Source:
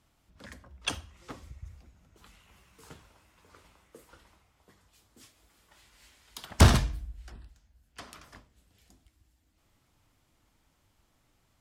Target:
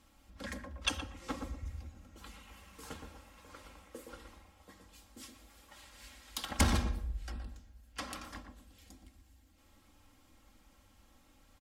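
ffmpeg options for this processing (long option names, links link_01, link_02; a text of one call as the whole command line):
ffmpeg -i in.wav -filter_complex "[0:a]aecho=1:1:3.7:0.68,acompressor=threshold=-35dB:ratio=2.5,asplit=2[link_01][link_02];[link_02]adelay=119,lowpass=frequency=940:poles=1,volume=-4dB,asplit=2[link_03][link_04];[link_04]adelay=119,lowpass=frequency=940:poles=1,volume=0.33,asplit=2[link_05][link_06];[link_06]adelay=119,lowpass=frequency=940:poles=1,volume=0.33,asplit=2[link_07][link_08];[link_08]adelay=119,lowpass=frequency=940:poles=1,volume=0.33[link_09];[link_01][link_03][link_05][link_07][link_09]amix=inputs=5:normalize=0,volume=3dB" out.wav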